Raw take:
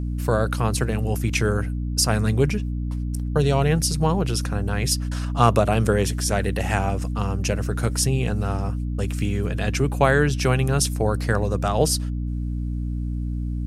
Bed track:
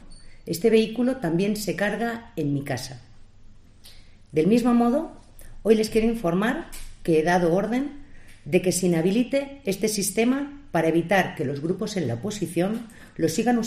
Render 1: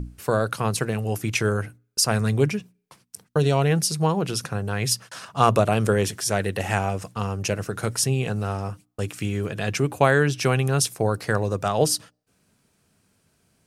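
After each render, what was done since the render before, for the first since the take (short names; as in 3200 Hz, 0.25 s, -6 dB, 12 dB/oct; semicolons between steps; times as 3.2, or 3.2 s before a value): notches 60/120/180/240/300 Hz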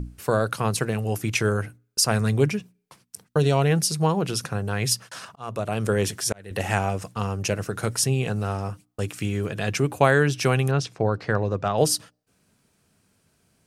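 5.21–6.51 auto swell 0.729 s; 10.71–11.78 air absorption 160 m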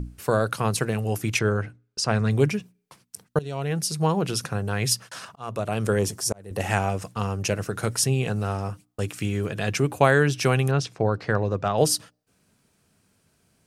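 1.39–2.31 air absorption 100 m; 3.39–4.14 fade in, from -19 dB; 5.99–6.6 band shelf 2400 Hz -9.5 dB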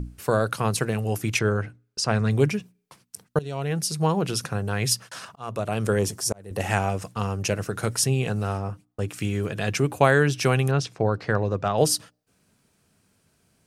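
8.58–9.11 high shelf 2500 Hz -9 dB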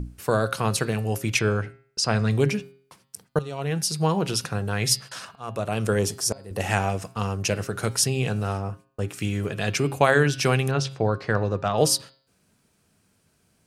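de-hum 134.9 Hz, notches 37; dynamic EQ 4100 Hz, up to +3 dB, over -40 dBFS, Q 0.79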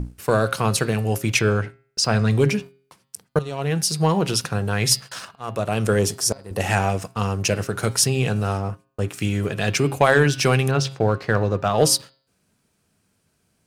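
sample leveller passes 1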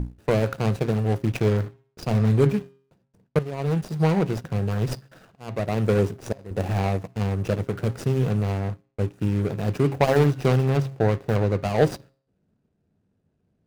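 median filter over 41 samples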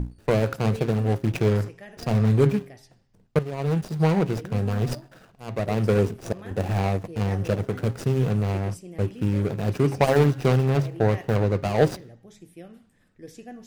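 add bed track -20 dB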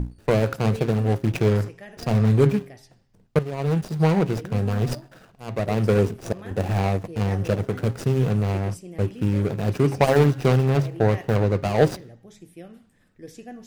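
gain +1.5 dB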